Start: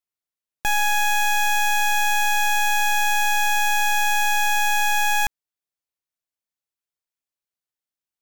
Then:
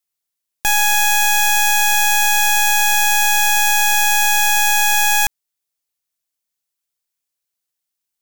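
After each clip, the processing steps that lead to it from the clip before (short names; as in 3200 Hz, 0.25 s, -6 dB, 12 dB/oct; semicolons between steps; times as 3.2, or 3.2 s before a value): high shelf 3400 Hz +9.5 dB; gain +2.5 dB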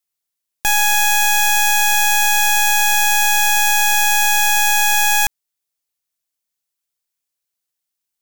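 nothing audible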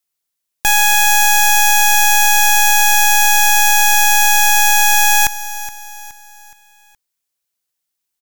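feedback echo 0.42 s, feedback 42%, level -15 dB; gain +3 dB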